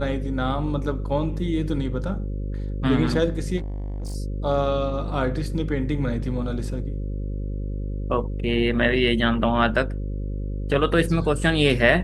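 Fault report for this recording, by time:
buzz 50 Hz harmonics 11 -28 dBFS
3.57–4.16 clipped -27 dBFS

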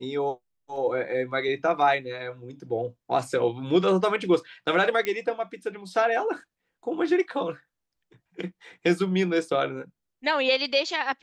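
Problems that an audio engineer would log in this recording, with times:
5.05 pop -14 dBFS

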